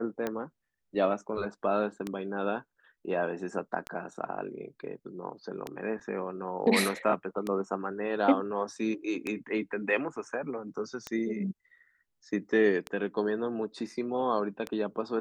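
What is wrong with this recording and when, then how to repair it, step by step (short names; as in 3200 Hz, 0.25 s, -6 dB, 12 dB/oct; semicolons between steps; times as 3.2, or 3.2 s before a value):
tick 33 1/3 rpm -18 dBFS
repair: de-click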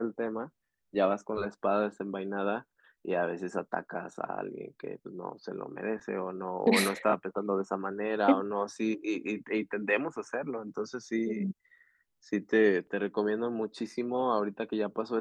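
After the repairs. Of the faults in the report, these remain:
none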